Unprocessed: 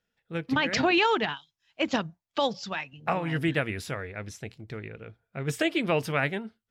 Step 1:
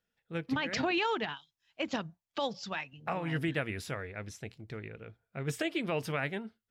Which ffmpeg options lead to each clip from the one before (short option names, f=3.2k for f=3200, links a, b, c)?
-af "alimiter=limit=-17.5dB:level=0:latency=1:release=180,volume=-4dB"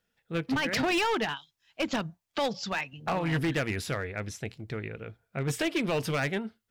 -af "volume=30dB,asoftclip=hard,volume=-30dB,volume=6.5dB"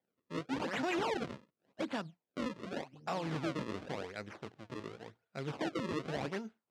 -af "acrusher=samples=33:mix=1:aa=0.000001:lfo=1:lforange=52.8:lforate=0.89,highpass=170,lowpass=4.6k,volume=-7dB"